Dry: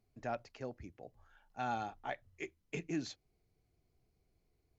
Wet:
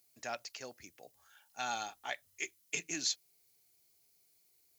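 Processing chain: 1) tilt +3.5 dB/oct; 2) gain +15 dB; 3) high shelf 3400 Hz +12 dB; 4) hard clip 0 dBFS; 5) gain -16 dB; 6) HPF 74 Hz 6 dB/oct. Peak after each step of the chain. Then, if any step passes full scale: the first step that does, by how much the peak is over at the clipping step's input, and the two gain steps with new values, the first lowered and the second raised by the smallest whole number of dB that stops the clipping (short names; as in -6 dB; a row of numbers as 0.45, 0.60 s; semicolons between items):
-23.0, -8.0, -3.0, -3.0, -19.0, -19.0 dBFS; no overload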